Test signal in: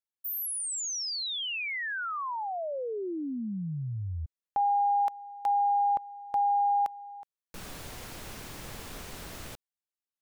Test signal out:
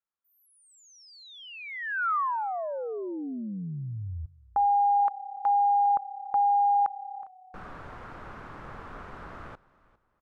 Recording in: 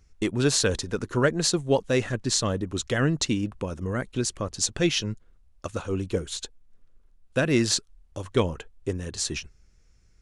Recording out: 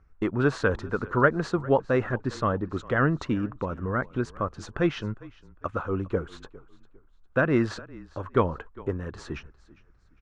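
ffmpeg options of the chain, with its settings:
-filter_complex "[0:a]lowpass=f=1300:t=q:w=2.5,aemphasis=mode=production:type=50kf,asplit=3[s0][s1][s2];[s1]adelay=404,afreqshift=-34,volume=0.0891[s3];[s2]adelay=808,afreqshift=-68,volume=0.0285[s4];[s0][s3][s4]amix=inputs=3:normalize=0,volume=0.891"

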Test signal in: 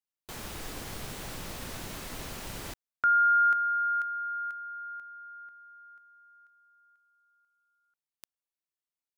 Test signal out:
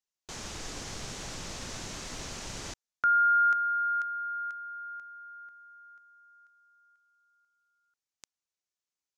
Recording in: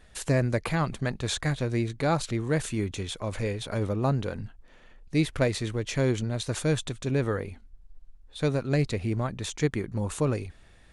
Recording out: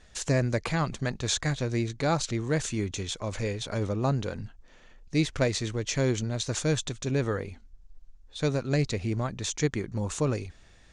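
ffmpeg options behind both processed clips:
-af "lowpass=f=6500:t=q:w=2.4,volume=0.891"

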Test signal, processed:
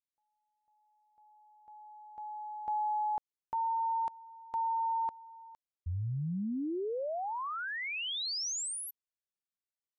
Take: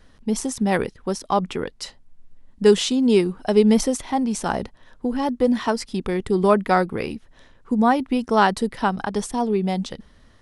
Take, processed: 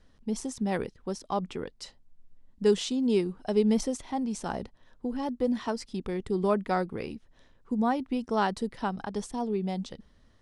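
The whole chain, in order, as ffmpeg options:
-af "lowpass=8600,equalizer=f=1700:t=o:w=2.3:g=-3.5,volume=0.398"

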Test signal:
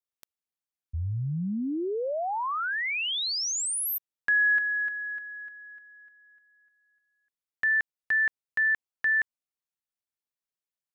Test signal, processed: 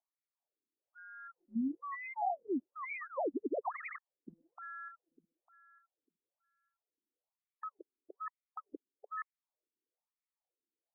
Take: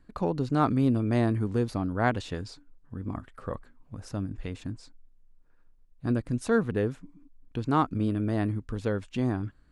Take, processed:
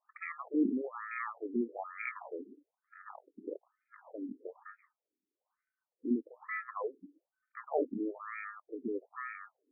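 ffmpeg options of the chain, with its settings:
-af "acrusher=samples=29:mix=1:aa=0.000001,afftfilt=real='re*between(b*sr/1024,300*pow(1800/300,0.5+0.5*sin(2*PI*1.1*pts/sr))/1.41,300*pow(1800/300,0.5+0.5*sin(2*PI*1.1*pts/sr))*1.41)':imag='im*between(b*sr/1024,300*pow(1800/300,0.5+0.5*sin(2*PI*1.1*pts/sr))/1.41,300*pow(1800/300,0.5+0.5*sin(2*PI*1.1*pts/sr))*1.41)':win_size=1024:overlap=0.75,volume=0.841"

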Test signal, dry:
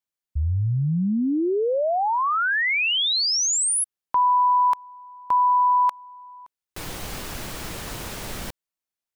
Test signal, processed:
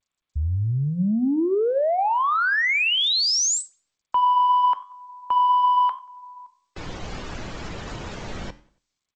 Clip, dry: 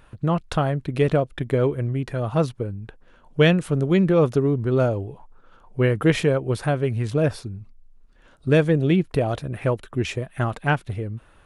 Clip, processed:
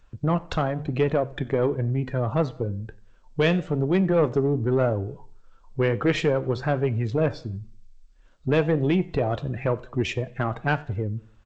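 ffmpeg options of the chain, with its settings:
-filter_complex "[0:a]afftdn=nr=13:nf=-39,acrossover=split=230[s0][s1];[s0]acompressor=threshold=0.0794:ratio=8:attack=0.85:release=518:knee=2.83:detection=peak[s2];[s2][s1]amix=inputs=2:normalize=0,asplit=2[s3][s4];[s4]alimiter=limit=0.178:level=0:latency=1:release=353,volume=0.75[s5];[s3][s5]amix=inputs=2:normalize=0,acontrast=87,flanger=delay=8.9:depth=3.7:regen=-82:speed=1:shape=triangular,asplit=2[s6][s7];[s7]adelay=92,lowpass=f=4000:p=1,volume=0.0668,asplit=2[s8][s9];[s9]adelay=92,lowpass=f=4000:p=1,volume=0.46,asplit=2[s10][s11];[s11]adelay=92,lowpass=f=4000:p=1,volume=0.46[s12];[s8][s10][s12]amix=inputs=3:normalize=0[s13];[s6][s13]amix=inputs=2:normalize=0,volume=0.501" -ar 16000 -c:a g722

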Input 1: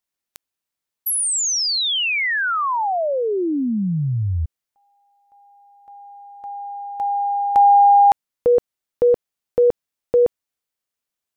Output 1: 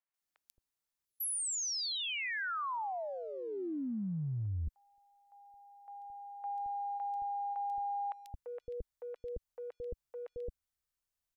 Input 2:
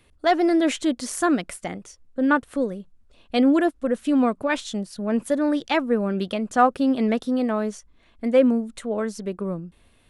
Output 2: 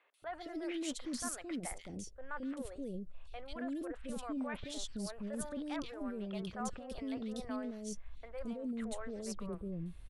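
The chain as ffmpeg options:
-filter_complex "[0:a]asubboost=boost=6:cutoff=88,areverse,acompressor=threshold=0.0355:ratio=12:attack=0.39:release=59:knee=1:detection=peak,areverse,asoftclip=type=hard:threshold=0.0562,acrossover=split=510|2700[s0][s1][s2];[s2]adelay=140[s3];[s0]adelay=220[s4];[s4][s1][s3]amix=inputs=3:normalize=0,volume=0.562"

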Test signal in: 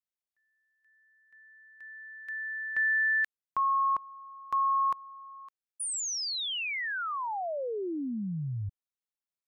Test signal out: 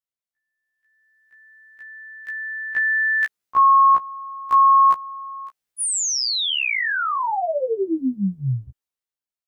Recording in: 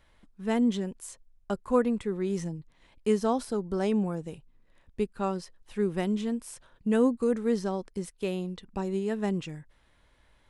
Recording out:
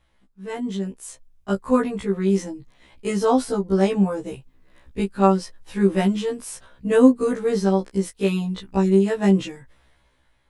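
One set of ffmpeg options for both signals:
-af "dynaudnorm=f=180:g=11:m=4.47,afftfilt=real='re*1.73*eq(mod(b,3),0)':imag='im*1.73*eq(mod(b,3),0)':win_size=2048:overlap=0.75"

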